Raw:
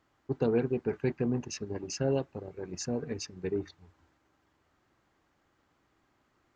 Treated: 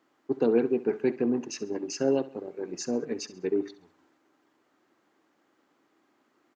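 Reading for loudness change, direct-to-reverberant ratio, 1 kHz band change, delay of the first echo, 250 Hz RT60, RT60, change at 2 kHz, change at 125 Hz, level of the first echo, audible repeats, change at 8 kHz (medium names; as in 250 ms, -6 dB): +4.0 dB, no reverb, +2.5 dB, 67 ms, no reverb, no reverb, +2.0 dB, -9.0 dB, -17.0 dB, 3, +1.5 dB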